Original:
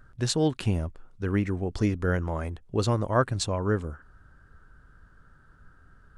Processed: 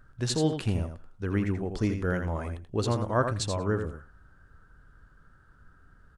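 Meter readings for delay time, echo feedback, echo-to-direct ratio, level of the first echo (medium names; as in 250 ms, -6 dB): 83 ms, no regular repeats, -7.0 dB, -7.0 dB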